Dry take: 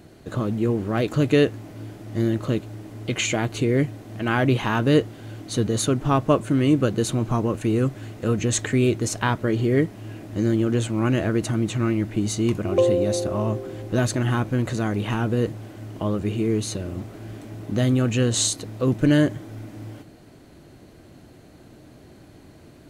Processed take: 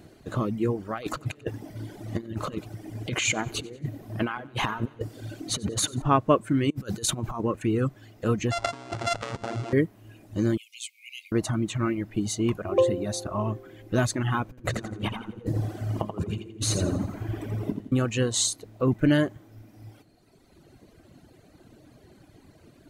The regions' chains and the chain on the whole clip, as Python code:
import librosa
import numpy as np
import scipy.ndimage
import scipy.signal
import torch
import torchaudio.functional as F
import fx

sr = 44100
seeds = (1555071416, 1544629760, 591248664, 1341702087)

y = fx.chain(x, sr, fx.over_compress(threshold_db=-26.0, ratio=-0.5),
    fx.echo_split(split_hz=540.0, low_ms=159, high_ms=93, feedback_pct=52, wet_db=-11), at=(0.93, 6.02))
y = fx.chain(y, sr, fx.high_shelf(hz=3000.0, db=6.0),
    fx.over_compress(threshold_db=-25.0, ratio=-0.5), at=(6.7, 7.41))
y = fx.chain(y, sr, fx.sample_sort(block=64),
    fx.over_compress(threshold_db=-27.0, ratio=-1.0),
    fx.lowpass(hz=8000.0, slope=24), at=(8.51, 9.73))
y = fx.chain(y, sr, fx.cheby1_highpass(hz=2100.0, order=10),
    fx.high_shelf(hz=10000.0, db=2.0), at=(10.57, 11.32))
y = fx.chain(y, sr, fx.low_shelf(hz=460.0, db=4.5),
    fx.over_compress(threshold_db=-26.0, ratio=-0.5),
    fx.echo_feedback(ms=84, feedback_pct=56, wet_db=-4), at=(14.49, 17.92))
y = fx.dynamic_eq(y, sr, hz=1100.0, q=1.6, threshold_db=-42.0, ratio=4.0, max_db=4)
y = fx.dereverb_blind(y, sr, rt60_s=2.0)
y = y * 10.0 ** (-2.0 / 20.0)